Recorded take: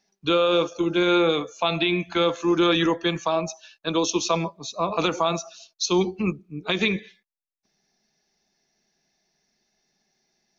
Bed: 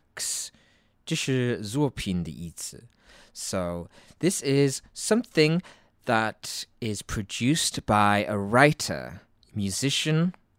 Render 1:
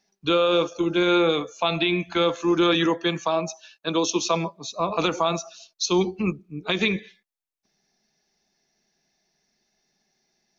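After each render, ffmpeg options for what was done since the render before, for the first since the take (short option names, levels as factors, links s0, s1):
-filter_complex "[0:a]asettb=1/sr,asplit=3[s0][s1][s2];[s0]atrim=end=2.744[s3];[s1]atrim=start=2.74:end=4.8,asetpts=PTS-STARTPTS,afade=t=in:d=0.004:c=qsin,afade=t=out:st=2.056:d=0.004:c=qsin,highpass=110[s4];[s2]atrim=start=4.796[s5];[s3][s4]acrossfade=d=0.004:c1=hsin:c2=qsin[s6];[s6][s5]acrossfade=d=0.004:c1=qsin:c2=hsin"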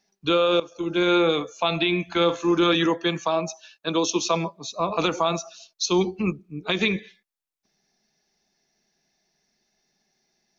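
-filter_complex "[0:a]asettb=1/sr,asplit=3[s0][s1][s2];[s0]atrim=end=2.144[s3];[s1]atrim=start=2.14:end=2.72,asetpts=PTS-STARTPTS,afade=t=in:d=0.004:c=qsin,afade=t=out:st=0.576:d=0.004:c=qsin,asplit=2[s4][s5];[s5]adelay=47,volume=0.251[s6];[s4][s6]amix=inputs=2:normalize=0,atrim=end_sample=25578[s7];[s2]atrim=start=2.716[s8];[s3][s7]acrossfade=d=0.004:c1=hsin:c2=qsin[s9];[s9][s8]acrossfade=d=0.004:c1=qsin:c2=hsin,asplit=2[s10][s11];[s10]atrim=end=0.6,asetpts=PTS-STARTPTS,afade=t=out:st=0.596:d=0.004:c=hsin:silence=0.141254[s12];[s11]atrim=start=0.6,asetpts=PTS-STARTPTS,afade=t=in:d=0.44:silence=0.141254[s13];[s12][s13]concat=n=2:v=0:a=1"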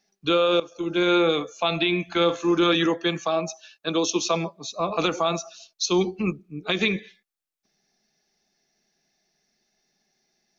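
-af "equalizer=f=71:t=o:w=1.8:g=-3.5,bandreject=f=960:w=9.5"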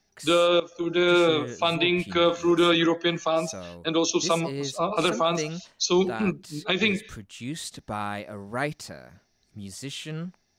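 -filter_complex "[1:a]volume=0.299[s0];[0:a][s0]amix=inputs=2:normalize=0"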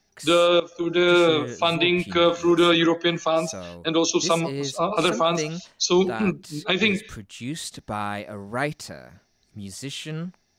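-af "volume=1.33"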